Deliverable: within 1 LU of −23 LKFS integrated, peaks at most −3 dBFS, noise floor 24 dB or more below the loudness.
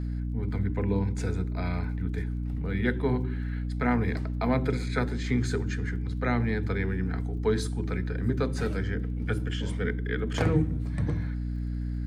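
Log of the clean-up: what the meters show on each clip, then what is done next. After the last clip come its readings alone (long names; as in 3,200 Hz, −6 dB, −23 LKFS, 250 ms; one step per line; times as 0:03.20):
crackle rate 33 per second; mains hum 60 Hz; hum harmonics up to 300 Hz; level of the hum −28 dBFS; integrated loudness −29.5 LKFS; sample peak −11.5 dBFS; target loudness −23.0 LKFS
→ click removal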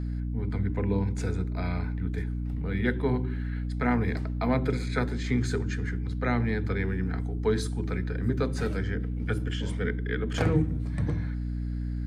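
crackle rate 0 per second; mains hum 60 Hz; hum harmonics up to 300 Hz; level of the hum −28 dBFS
→ hum removal 60 Hz, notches 5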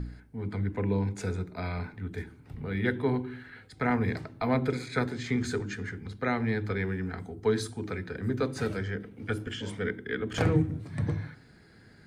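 mains hum none found; integrated loudness −31.5 LKFS; sample peak −12.5 dBFS; target loudness −23.0 LKFS
→ level +8.5 dB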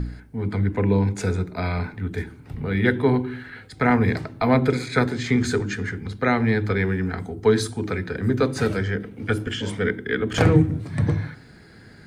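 integrated loudness −23.0 LKFS; sample peak −4.0 dBFS; background noise floor −47 dBFS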